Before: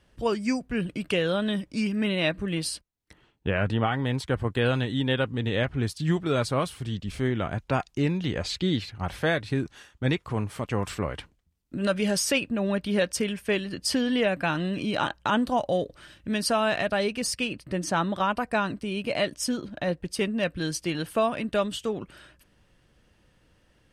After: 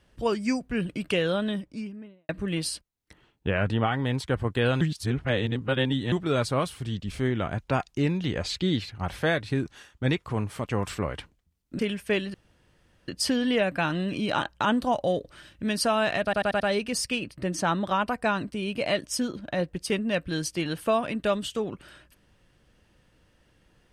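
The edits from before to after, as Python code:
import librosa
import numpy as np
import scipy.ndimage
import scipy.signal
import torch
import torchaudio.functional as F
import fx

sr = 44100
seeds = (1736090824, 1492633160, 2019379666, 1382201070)

y = fx.studio_fade_out(x, sr, start_s=1.23, length_s=1.06)
y = fx.edit(y, sr, fx.reverse_span(start_s=4.81, length_s=1.31),
    fx.cut(start_s=11.79, length_s=1.39),
    fx.insert_room_tone(at_s=13.73, length_s=0.74),
    fx.stutter(start_s=16.89, slice_s=0.09, count=5), tone=tone)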